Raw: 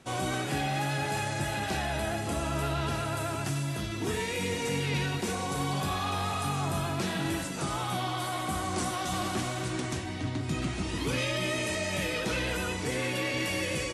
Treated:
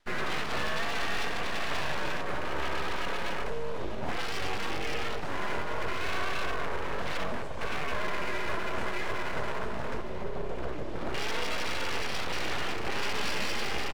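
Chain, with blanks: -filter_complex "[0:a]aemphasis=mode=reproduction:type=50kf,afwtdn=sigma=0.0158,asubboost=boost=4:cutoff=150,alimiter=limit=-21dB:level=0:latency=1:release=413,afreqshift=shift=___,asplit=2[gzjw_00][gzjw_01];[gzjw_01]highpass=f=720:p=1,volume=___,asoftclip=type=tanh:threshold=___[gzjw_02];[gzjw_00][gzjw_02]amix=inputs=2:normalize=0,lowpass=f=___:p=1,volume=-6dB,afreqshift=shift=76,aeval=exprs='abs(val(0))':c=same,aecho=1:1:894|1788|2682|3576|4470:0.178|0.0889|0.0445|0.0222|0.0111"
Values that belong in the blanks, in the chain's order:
15, 15dB, -18.5dB, 5400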